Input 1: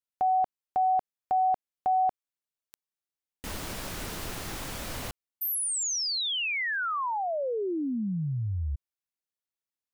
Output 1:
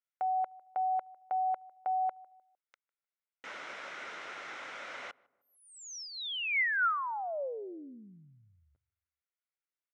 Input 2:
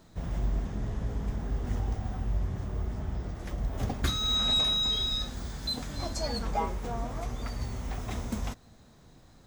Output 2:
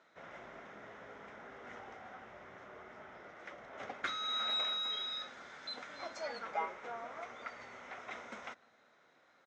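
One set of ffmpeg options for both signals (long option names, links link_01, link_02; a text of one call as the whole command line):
ffmpeg -i in.wav -filter_complex "[0:a]highpass=490,equalizer=frequency=560:width_type=q:width=4:gain=4,equalizer=frequency=1400:width_type=q:width=4:gain=10,equalizer=frequency=2100:width_type=q:width=4:gain=9,equalizer=frequency=4600:width_type=q:width=4:gain=-9,lowpass=frequency=5400:width=0.5412,lowpass=frequency=5400:width=1.3066,asplit=2[link_01][link_02];[link_02]adelay=152,lowpass=frequency=980:poles=1,volume=-21.5dB,asplit=2[link_03][link_04];[link_04]adelay=152,lowpass=frequency=980:poles=1,volume=0.48,asplit=2[link_05][link_06];[link_06]adelay=152,lowpass=frequency=980:poles=1,volume=0.48[link_07];[link_01][link_03][link_05][link_07]amix=inputs=4:normalize=0,volume=-7dB" out.wav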